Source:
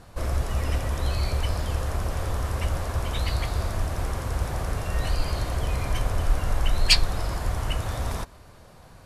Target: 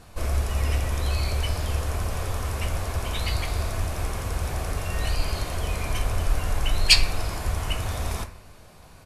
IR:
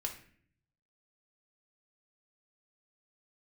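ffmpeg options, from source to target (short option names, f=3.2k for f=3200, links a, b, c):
-filter_complex "[0:a]bandreject=f=61.57:t=h:w=4,bandreject=f=123.14:t=h:w=4,bandreject=f=184.71:t=h:w=4,bandreject=f=246.28:t=h:w=4,bandreject=f=307.85:t=h:w=4,bandreject=f=369.42:t=h:w=4,bandreject=f=430.99:t=h:w=4,bandreject=f=492.56:t=h:w=4,bandreject=f=554.13:t=h:w=4,bandreject=f=615.7:t=h:w=4,bandreject=f=677.27:t=h:w=4,bandreject=f=738.84:t=h:w=4,bandreject=f=800.41:t=h:w=4,bandreject=f=861.98:t=h:w=4,bandreject=f=923.55:t=h:w=4,bandreject=f=985.12:t=h:w=4,bandreject=f=1.04669k:t=h:w=4,bandreject=f=1.10826k:t=h:w=4,bandreject=f=1.16983k:t=h:w=4,bandreject=f=1.2314k:t=h:w=4,bandreject=f=1.29297k:t=h:w=4,bandreject=f=1.35454k:t=h:w=4,bandreject=f=1.41611k:t=h:w=4,bandreject=f=1.47768k:t=h:w=4,bandreject=f=1.53925k:t=h:w=4,bandreject=f=1.60082k:t=h:w=4,bandreject=f=1.66239k:t=h:w=4,bandreject=f=1.72396k:t=h:w=4,bandreject=f=1.78553k:t=h:w=4,bandreject=f=1.8471k:t=h:w=4,bandreject=f=1.90867k:t=h:w=4,bandreject=f=1.97024k:t=h:w=4,bandreject=f=2.03181k:t=h:w=4,bandreject=f=2.09338k:t=h:w=4,bandreject=f=2.15495k:t=h:w=4,bandreject=f=2.21652k:t=h:w=4,bandreject=f=2.27809k:t=h:w=4,asplit=2[a][b];[b]equalizer=f=2.4k:t=o:w=0.39:g=8[c];[1:a]atrim=start_sample=2205,highshelf=f=3.9k:g=9.5[d];[c][d]afir=irnorm=-1:irlink=0,volume=-5dB[e];[a][e]amix=inputs=2:normalize=0,aresample=32000,aresample=44100,volume=-3.5dB"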